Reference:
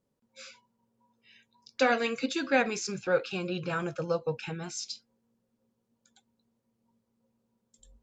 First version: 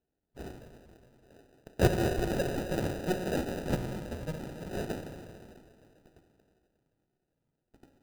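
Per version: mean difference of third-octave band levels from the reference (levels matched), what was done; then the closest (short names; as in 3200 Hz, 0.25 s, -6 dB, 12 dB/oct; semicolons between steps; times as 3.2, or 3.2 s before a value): 14.0 dB: LFO high-pass saw down 1.6 Hz 920–5600 Hz; plate-style reverb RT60 3.2 s, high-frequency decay 0.8×, DRR 2.5 dB; sample-rate reducer 1100 Hz, jitter 0%; tilt shelf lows +3 dB, about 750 Hz; gain +1 dB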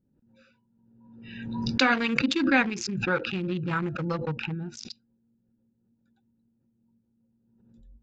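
6.0 dB: Wiener smoothing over 41 samples; LPF 4300 Hz 12 dB/oct; band shelf 540 Hz -10.5 dB 1 oct; backwards sustainer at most 44 dB/s; gain +6 dB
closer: second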